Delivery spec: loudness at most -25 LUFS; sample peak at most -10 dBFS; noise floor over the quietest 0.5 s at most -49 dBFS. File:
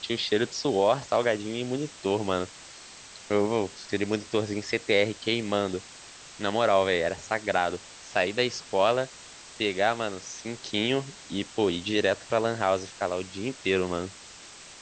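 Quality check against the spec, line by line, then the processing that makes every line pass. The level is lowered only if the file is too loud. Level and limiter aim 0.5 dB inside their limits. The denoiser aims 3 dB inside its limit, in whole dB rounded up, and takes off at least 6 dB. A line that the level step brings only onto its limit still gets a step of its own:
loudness -27.5 LUFS: OK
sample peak -8.5 dBFS: fail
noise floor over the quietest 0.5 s -47 dBFS: fail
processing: denoiser 6 dB, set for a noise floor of -47 dBFS; limiter -10.5 dBFS

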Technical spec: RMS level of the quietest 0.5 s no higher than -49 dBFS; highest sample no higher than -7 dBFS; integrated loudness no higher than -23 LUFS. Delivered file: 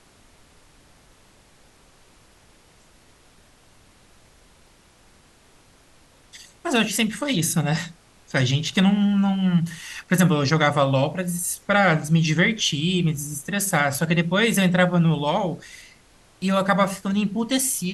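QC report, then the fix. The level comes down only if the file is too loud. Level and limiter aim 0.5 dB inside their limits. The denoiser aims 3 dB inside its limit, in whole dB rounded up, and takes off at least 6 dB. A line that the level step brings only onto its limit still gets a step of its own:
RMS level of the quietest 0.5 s -55 dBFS: OK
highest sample -5.0 dBFS: fail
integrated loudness -21.5 LUFS: fail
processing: gain -2 dB; limiter -7.5 dBFS

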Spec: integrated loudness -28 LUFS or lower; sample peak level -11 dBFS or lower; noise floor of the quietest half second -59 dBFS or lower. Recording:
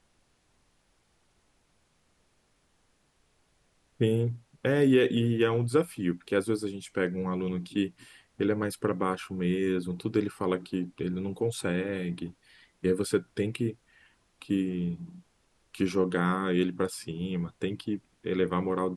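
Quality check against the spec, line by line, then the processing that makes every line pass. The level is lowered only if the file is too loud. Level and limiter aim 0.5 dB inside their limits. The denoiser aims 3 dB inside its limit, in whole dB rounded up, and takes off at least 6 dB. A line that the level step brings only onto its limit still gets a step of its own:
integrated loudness -29.5 LUFS: OK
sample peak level -12.5 dBFS: OK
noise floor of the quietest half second -69 dBFS: OK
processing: none

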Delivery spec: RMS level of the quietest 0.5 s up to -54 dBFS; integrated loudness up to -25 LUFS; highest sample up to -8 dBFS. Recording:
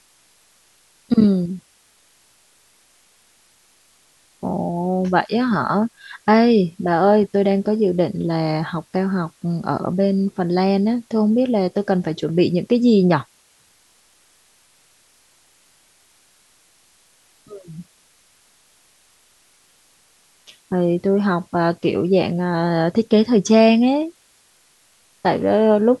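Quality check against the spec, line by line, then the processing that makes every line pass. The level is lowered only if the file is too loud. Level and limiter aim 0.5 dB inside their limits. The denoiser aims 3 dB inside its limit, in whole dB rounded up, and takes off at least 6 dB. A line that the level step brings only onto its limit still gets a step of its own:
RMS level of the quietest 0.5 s -57 dBFS: OK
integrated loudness -18.5 LUFS: fail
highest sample -3.0 dBFS: fail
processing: gain -7 dB

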